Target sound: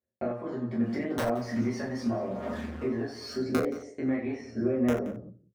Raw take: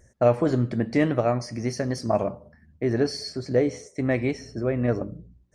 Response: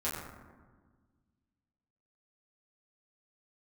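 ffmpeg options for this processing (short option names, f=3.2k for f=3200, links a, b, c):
-filter_complex "[0:a]asettb=1/sr,asplit=3[a][b][c];[a]atrim=end=0.824[d];[b]atrim=start=0.82:end=3.34,asetpts=PTS-STARTPTS,afade=t=in:d=0.004:c=qsin,afade=t=out:st=2.516:d=0.004:c=qsin,aeval=exprs='val(0)+0.5*0.0188*sgn(val(0))':c=same[e];[c]atrim=start=3.336[f];[d][e]acrossfade=d=0.004:c1=hsin:c2=qsin[g];[g][f]acrossfade=d=0.004:c1=qsin:c2=hsin,agate=range=-35dB:threshold=-45dB:ratio=16:detection=peak,highpass=230,aemphasis=mode=reproduction:type=75kf,acompressor=threshold=-33dB:ratio=10,aphaser=in_gain=1:out_gain=1:delay=1.2:decay=0.47:speed=0.82:type=triangular,aeval=exprs='(mod(11.2*val(0)+1,2)-1)/11.2':c=same,asplit=2[h][i];[i]adelay=174.9,volume=-16dB,highshelf=f=4k:g=-3.94[j];[h][j]amix=inputs=2:normalize=0[k];[1:a]atrim=start_sample=2205,atrim=end_sample=4410[l];[k][l]afir=irnorm=-1:irlink=0"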